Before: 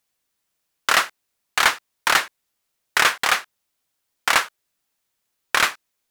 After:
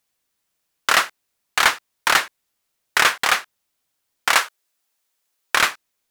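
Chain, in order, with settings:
0:04.33–0:05.55: bass and treble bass −12 dB, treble +2 dB
level +1 dB

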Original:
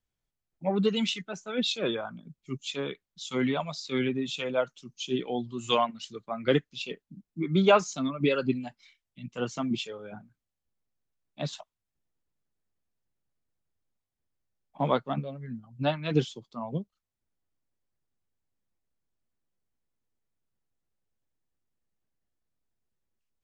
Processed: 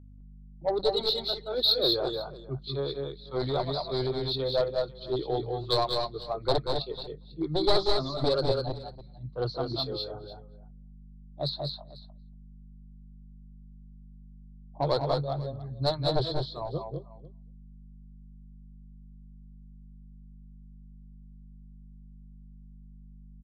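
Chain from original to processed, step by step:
wavefolder on the positive side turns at −22 dBFS
low-pass that shuts in the quiet parts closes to 730 Hz, open at −25 dBFS
drawn EQ curve 140 Hz 0 dB, 200 Hz −29 dB, 330 Hz −2 dB, 660 Hz −1 dB, 1,300 Hz −8 dB, 2,800 Hz −26 dB, 4,200 Hz +13 dB, 6,400 Hz −28 dB
slap from a distant wall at 40 metres, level −26 dB
in parallel at −3 dB: soft clipping −26.5 dBFS, distortion −10 dB
on the sum: mains hum 50 Hz, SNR 16 dB
on a send: multi-tap delay 184/206/495 ms −9.5/−4.5/−19 dB

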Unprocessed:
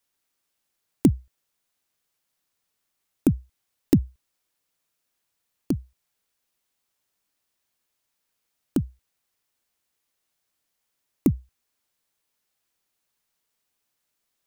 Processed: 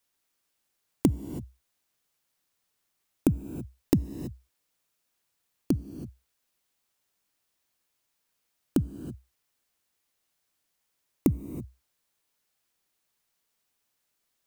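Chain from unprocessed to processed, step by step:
downward compressor, threshold −18 dBFS, peak gain reduction 6.5 dB
reverb whose tail is shaped and stops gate 350 ms rising, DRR 11.5 dB

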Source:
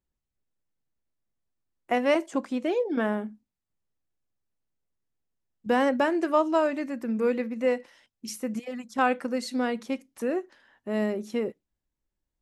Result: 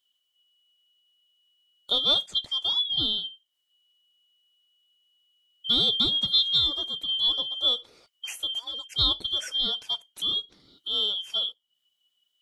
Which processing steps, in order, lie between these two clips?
band-splitting scrambler in four parts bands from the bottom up 2413
one half of a high-frequency compander encoder only

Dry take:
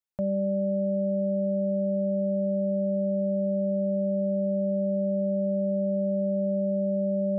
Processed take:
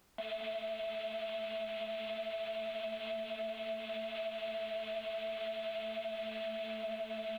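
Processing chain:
variable-slope delta modulation 16 kbit/s
multi-voice chorus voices 6, 1.2 Hz, delay 15 ms, depth 3 ms
high-pass filter 180 Hz
in parallel at +1.5 dB: brickwall limiter −41.5 dBFS, peak gain reduction 24 dB
on the sum: pitch shifter +2 semitones
low-shelf EQ 480 Hz −7 dB
single-tap delay 224 ms −4.5 dB
downward compressor, threshold −34 dBFS, peak gain reduction 9 dB
background noise brown −55 dBFS
spectral tilt +3 dB per octave
level −1.5 dB

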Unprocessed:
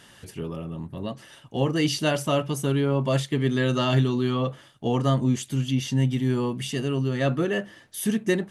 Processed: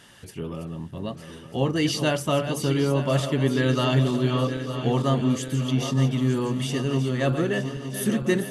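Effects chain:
feedback delay that plays each chunk backwards 457 ms, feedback 73%, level −9.5 dB

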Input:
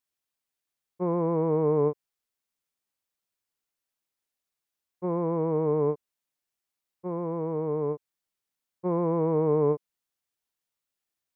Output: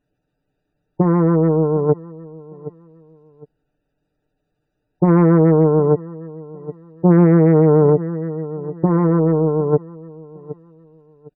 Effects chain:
adaptive Wiener filter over 41 samples
low-shelf EQ 140 Hz +6.5 dB
compressor whose output falls as the input rises −31 dBFS, ratio −0.5
gate on every frequency bin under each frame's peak −30 dB strong
comb filter 6.7 ms, depth 68%
repeating echo 759 ms, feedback 28%, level −21 dB
boost into a limiter +24.5 dB
highs frequency-modulated by the lows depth 0.18 ms
level −4 dB

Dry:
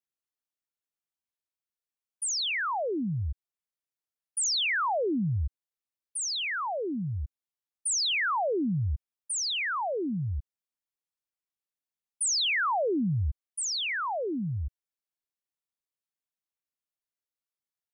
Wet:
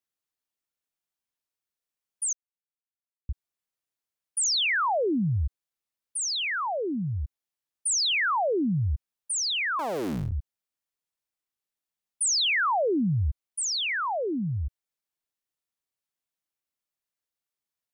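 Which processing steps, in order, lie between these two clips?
0:02.33–0:03.29: silence
0:09.79–0:10.32: sub-harmonics by changed cycles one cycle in 3, muted
level +2.5 dB

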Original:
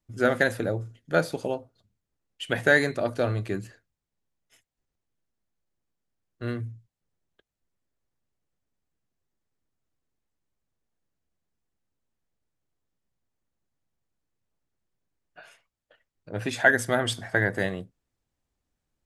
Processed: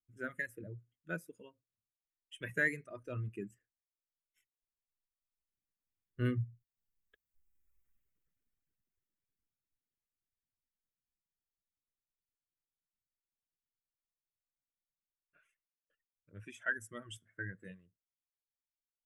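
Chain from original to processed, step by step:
source passing by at 0:07.79, 12 m/s, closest 4.9 metres
noise reduction from a noise print of the clip's start 7 dB
phaser with its sweep stopped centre 1,900 Hz, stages 4
reverb reduction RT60 1.8 s
level +12.5 dB

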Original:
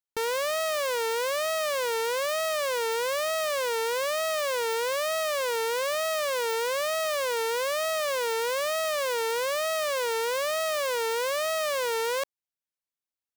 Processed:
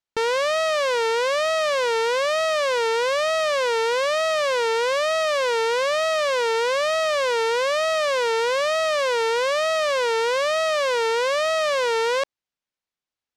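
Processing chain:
low-pass filter 5,500 Hz 12 dB per octave
level +6.5 dB

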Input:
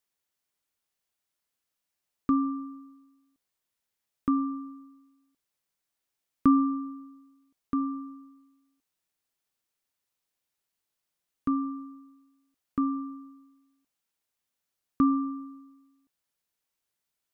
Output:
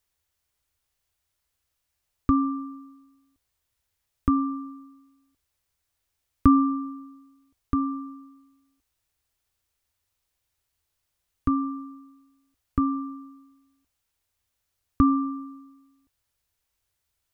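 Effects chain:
low shelf with overshoot 120 Hz +13.5 dB, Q 1.5
level +5 dB

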